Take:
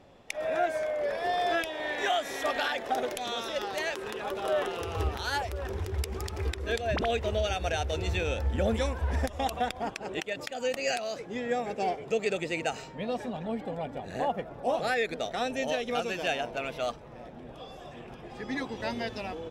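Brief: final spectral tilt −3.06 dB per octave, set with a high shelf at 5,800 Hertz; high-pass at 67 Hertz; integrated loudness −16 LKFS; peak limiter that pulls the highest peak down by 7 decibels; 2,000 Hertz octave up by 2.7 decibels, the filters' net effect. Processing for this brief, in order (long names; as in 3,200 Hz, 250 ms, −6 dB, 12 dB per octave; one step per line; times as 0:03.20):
high-pass filter 67 Hz
parametric band 2,000 Hz +4 dB
high-shelf EQ 5,800 Hz −4.5 dB
level +16.5 dB
brickwall limiter −5 dBFS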